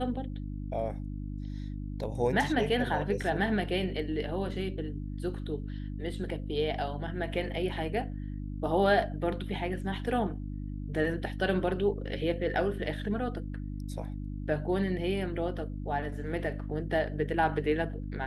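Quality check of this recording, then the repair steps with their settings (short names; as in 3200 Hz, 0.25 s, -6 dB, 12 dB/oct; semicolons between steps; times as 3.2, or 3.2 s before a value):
hum 50 Hz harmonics 6 -37 dBFS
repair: de-hum 50 Hz, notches 6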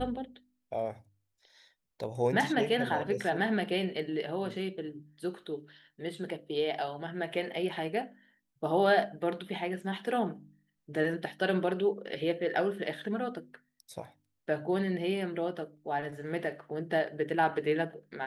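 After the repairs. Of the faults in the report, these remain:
none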